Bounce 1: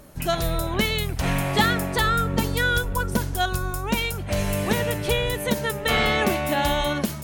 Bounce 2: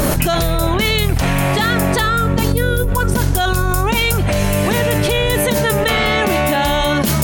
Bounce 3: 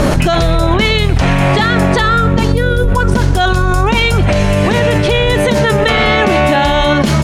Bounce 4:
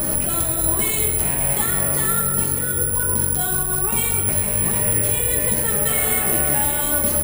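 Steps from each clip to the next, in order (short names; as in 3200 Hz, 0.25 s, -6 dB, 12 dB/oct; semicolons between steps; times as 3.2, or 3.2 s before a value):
spectral gain 2.52–2.89, 630–9100 Hz -11 dB; fast leveller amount 100%
air absorption 84 m; echo 0.124 s -19.5 dB; maximiser +6.5 dB; gain -1 dB
echo 0.589 s -15.5 dB; reverb RT60 2.2 s, pre-delay 10 ms, DRR -1 dB; careless resampling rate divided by 4×, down none, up zero stuff; gain -18 dB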